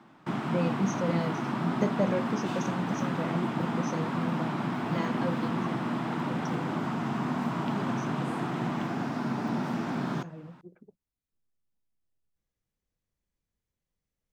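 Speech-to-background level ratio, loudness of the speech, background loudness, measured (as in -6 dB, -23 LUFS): -3.5 dB, -35.0 LUFS, -31.5 LUFS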